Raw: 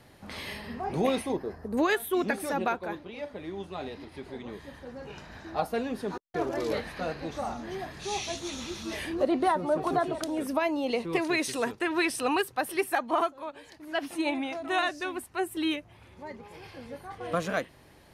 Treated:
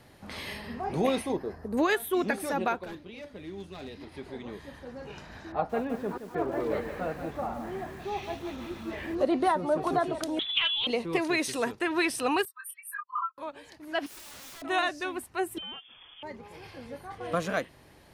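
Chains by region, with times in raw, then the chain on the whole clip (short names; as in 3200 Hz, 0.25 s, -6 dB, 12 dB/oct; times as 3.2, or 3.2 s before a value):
2.84–4.01 hard clip -32 dBFS + bell 860 Hz -8 dB 1.9 oct
5.52–9.15 LPF 2000 Hz + lo-fi delay 0.173 s, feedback 35%, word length 8-bit, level -9 dB
10.39–10.87 inverted band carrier 3700 Hz + Doppler distortion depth 0.25 ms
12.45–13.38 spectral contrast raised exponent 2.4 + brick-wall FIR high-pass 1000 Hz + doubler 23 ms -6.5 dB
14.06–14.62 HPF 960 Hz 6 dB/oct + compressor 3:1, threshold -36 dBFS + wrapped overs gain 42 dB
15.58–16.23 compressor 2.5:1, threshold -40 dBFS + hard clip -38.5 dBFS + inverted band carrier 3400 Hz
whole clip: dry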